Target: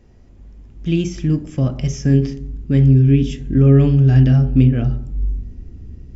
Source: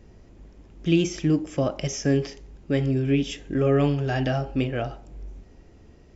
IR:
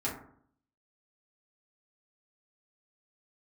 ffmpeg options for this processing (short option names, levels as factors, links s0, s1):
-filter_complex "[0:a]asubboost=boost=9.5:cutoff=220,asplit=2[s0][s1];[1:a]atrim=start_sample=2205,asetrate=40131,aresample=44100[s2];[s1][s2]afir=irnorm=-1:irlink=0,volume=0.2[s3];[s0][s3]amix=inputs=2:normalize=0,volume=0.75"